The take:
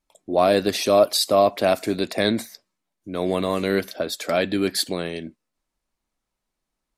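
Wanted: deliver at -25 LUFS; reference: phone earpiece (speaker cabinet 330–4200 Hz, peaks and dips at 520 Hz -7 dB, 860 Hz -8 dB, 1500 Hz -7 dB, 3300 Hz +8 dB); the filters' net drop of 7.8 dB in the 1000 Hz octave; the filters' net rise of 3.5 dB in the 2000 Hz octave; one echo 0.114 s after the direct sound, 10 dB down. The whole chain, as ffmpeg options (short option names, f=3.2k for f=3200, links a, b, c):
-af "highpass=330,equalizer=f=520:t=q:w=4:g=-7,equalizer=f=860:t=q:w=4:g=-8,equalizer=f=1.5k:t=q:w=4:g=-7,equalizer=f=3.3k:t=q:w=4:g=8,lowpass=f=4.2k:w=0.5412,lowpass=f=4.2k:w=1.3066,equalizer=f=1k:t=o:g=-8.5,equalizer=f=2k:t=o:g=8.5,aecho=1:1:114:0.316,volume=-0.5dB"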